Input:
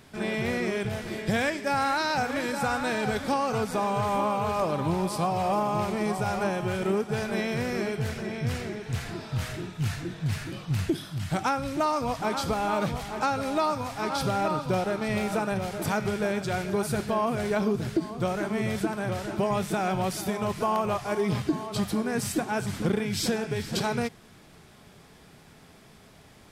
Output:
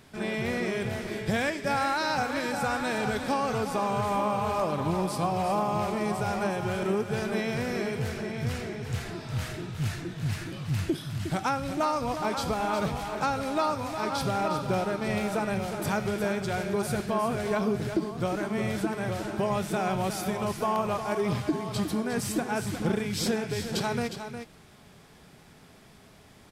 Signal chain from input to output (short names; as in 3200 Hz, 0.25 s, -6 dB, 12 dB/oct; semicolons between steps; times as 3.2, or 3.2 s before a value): echo 0.36 s -9 dB; gain -1.5 dB